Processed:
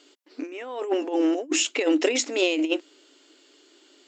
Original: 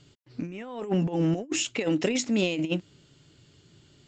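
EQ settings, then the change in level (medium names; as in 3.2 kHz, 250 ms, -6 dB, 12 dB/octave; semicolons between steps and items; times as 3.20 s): brick-wall FIR high-pass 260 Hz; +5.0 dB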